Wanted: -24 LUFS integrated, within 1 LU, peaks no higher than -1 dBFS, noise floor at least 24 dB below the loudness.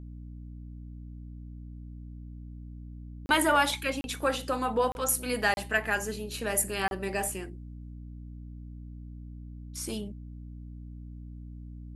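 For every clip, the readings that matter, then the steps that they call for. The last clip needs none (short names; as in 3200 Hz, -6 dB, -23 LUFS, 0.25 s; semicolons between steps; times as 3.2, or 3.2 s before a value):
dropouts 5; longest dropout 31 ms; hum 60 Hz; harmonics up to 300 Hz; hum level -40 dBFS; loudness -29.0 LUFS; peak -12.0 dBFS; loudness target -24.0 LUFS
-> interpolate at 3.26/4.01/4.92/5.54/6.88, 31 ms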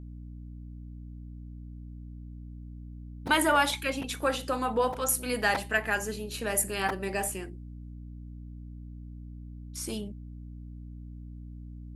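dropouts 0; hum 60 Hz; harmonics up to 300 Hz; hum level -40 dBFS
-> notches 60/120/180/240/300 Hz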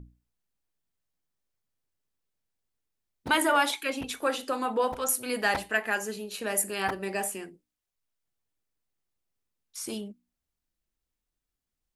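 hum none; loudness -28.5 LUFS; peak -11.5 dBFS; loudness target -24.0 LUFS
-> gain +4.5 dB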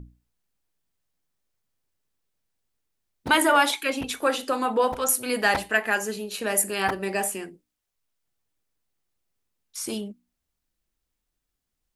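loudness -24.0 LUFS; peak -7.0 dBFS; noise floor -82 dBFS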